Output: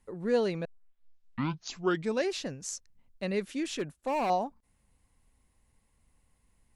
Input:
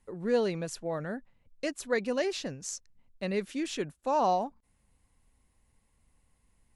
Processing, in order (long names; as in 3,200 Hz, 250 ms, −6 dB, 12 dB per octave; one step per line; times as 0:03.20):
0:00.65: tape start 1.64 s
0:03.78–0:04.30: gain into a clipping stage and back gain 26.5 dB